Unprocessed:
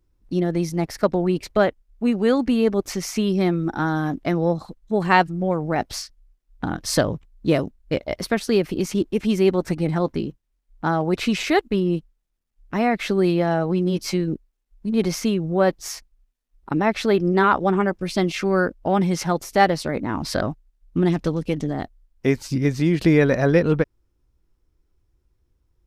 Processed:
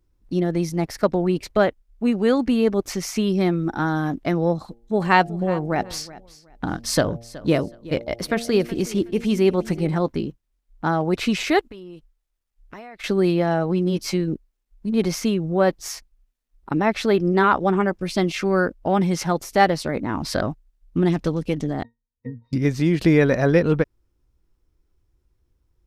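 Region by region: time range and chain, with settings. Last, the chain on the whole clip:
0:04.60–0:09.96: hum removal 116.4 Hz, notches 7 + repeating echo 371 ms, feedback 22%, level −18.5 dB
0:11.65–0:13.04: parametric band 190 Hz −9.5 dB 1.7 octaves + downward compressor 10 to 1, threshold −35 dBFS
0:21.83–0:22.53: treble cut that deepens with the level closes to 340 Hz, closed at −16 dBFS + resonances in every octave A#, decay 0.17 s
whole clip: no processing

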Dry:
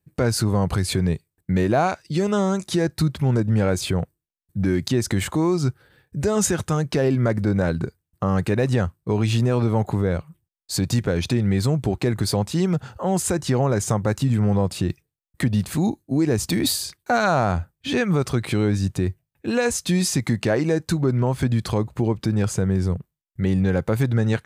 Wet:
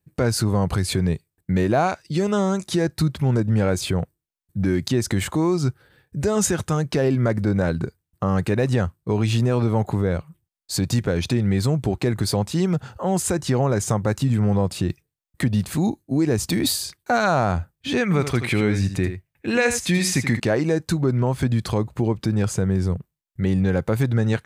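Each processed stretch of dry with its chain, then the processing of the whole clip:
0:18.03–0:20.40: parametric band 2,100 Hz +9 dB 0.78 octaves + single-tap delay 80 ms −10 dB
whole clip: no processing

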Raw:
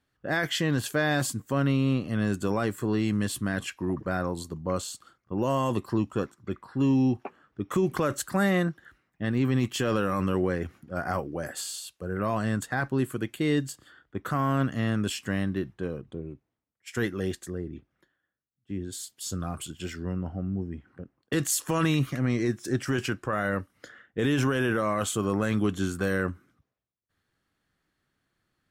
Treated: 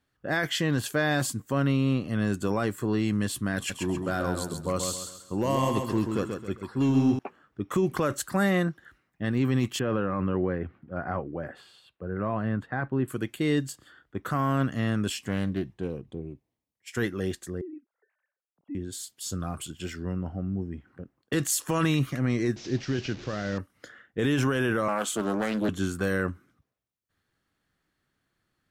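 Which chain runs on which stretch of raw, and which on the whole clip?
0:03.56–0:07.19: high-shelf EQ 3,900 Hz +6.5 dB + hard clipping −18 dBFS + repeating echo 134 ms, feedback 36%, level −5.5 dB
0:09.79–0:13.08: high-pass filter 52 Hz + high-frequency loss of the air 490 metres
0:15.17–0:16.93: parametric band 1,400 Hz −9.5 dB 0.45 octaves + highs frequency-modulated by the lows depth 0.21 ms
0:17.61–0:18.75: three sine waves on the formant tracks + low-pass filter 1,100 Hz 6 dB per octave + multiband upward and downward compressor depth 40%
0:22.56–0:23.58: linear delta modulator 32 kbit/s, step −35 dBFS + parametric band 1,100 Hz −10 dB 1.5 octaves
0:24.88–0:25.69: Butterworth high-pass 190 Hz + highs frequency-modulated by the lows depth 0.47 ms
whole clip: no processing

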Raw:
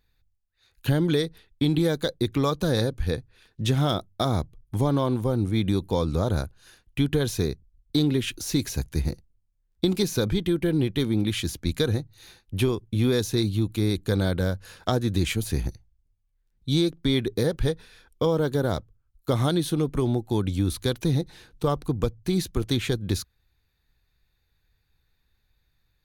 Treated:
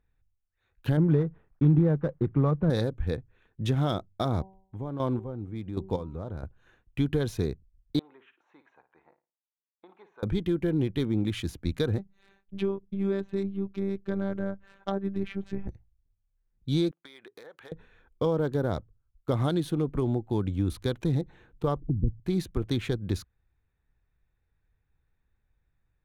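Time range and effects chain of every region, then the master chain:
0:00.97–0:02.70: variable-slope delta modulation 32 kbit/s + low-pass filter 1,500 Hz + parametric band 150 Hz +9 dB 0.48 octaves
0:04.23–0:06.43: square-wave tremolo 1.3 Hz, depth 65%, duty 25% + hum removal 191.3 Hz, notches 5
0:07.99–0:10.23: four-pole ladder band-pass 1,100 Hz, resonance 45% + flutter between parallel walls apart 9.5 metres, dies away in 0.28 s
0:11.98–0:15.68: treble cut that deepens with the level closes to 2,200 Hz, closed at −21.5 dBFS + phases set to zero 196 Hz
0:16.91–0:17.72: high-pass filter 910 Hz + downward compressor 8 to 1, threshold −37 dBFS
0:21.80–0:22.20: inverse Chebyshev low-pass filter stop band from 670 Hz + low-shelf EQ 170 Hz +7 dB + flanger swept by the level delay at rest 8.6 ms, full sweep at −18.5 dBFS
whole clip: adaptive Wiener filter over 9 samples; high-shelf EQ 3,000 Hz −8 dB; level −3 dB

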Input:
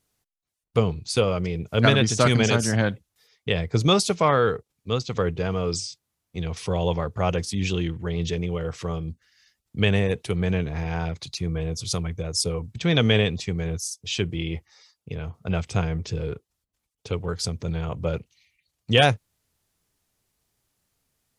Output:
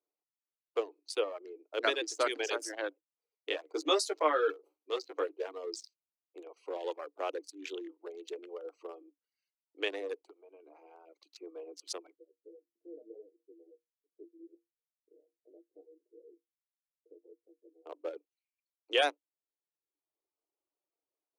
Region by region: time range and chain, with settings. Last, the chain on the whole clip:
0:03.51–0:05.48: double-tracking delay 13 ms −3.5 dB + level that may fall only so fast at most 140 dB per second
0:10.25–0:11.36: parametric band 140 Hz −5.5 dB 2.2 octaves + downward compressor, threshold −33 dBFS
0:12.15–0:17.86: inverse Chebyshev low-pass filter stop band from 970 Hz + flanger 1.7 Hz, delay 4.7 ms, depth 5.3 ms, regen +40% + tuned comb filter 68 Hz, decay 0.21 s, harmonics odd, mix 80%
whole clip: adaptive Wiener filter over 25 samples; reverb reduction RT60 0.86 s; Chebyshev high-pass filter 290 Hz, order 8; level −8.5 dB

